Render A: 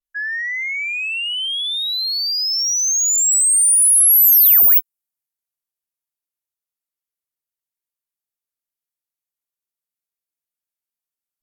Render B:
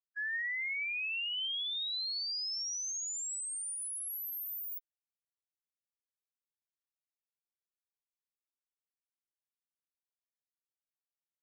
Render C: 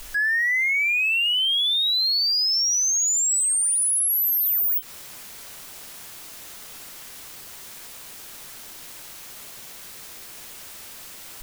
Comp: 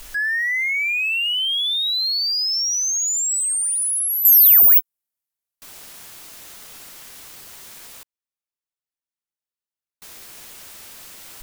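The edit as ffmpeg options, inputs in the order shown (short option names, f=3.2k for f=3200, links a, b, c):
-filter_complex "[2:a]asplit=3[a][b][c];[a]atrim=end=4.252[d];[0:a]atrim=start=4.248:end=5.622[e];[b]atrim=start=5.618:end=8.032[f];[1:a]atrim=start=8.028:end=10.022[g];[c]atrim=start=10.018[h];[d][e]acrossfade=d=0.004:c1=hsin:c2=hsin[i];[i][f]acrossfade=d=0.004:c1=hsin:c2=hsin[j];[j][g]acrossfade=d=0.004:c1=hsin:c2=hsin[k];[k][h]acrossfade=d=0.004:c1=hsin:c2=hsin"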